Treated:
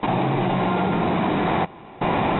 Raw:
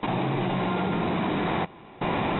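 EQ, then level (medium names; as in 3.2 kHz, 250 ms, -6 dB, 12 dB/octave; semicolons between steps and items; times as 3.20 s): distance through air 100 m; peaking EQ 760 Hz +3 dB 0.67 oct; +4.5 dB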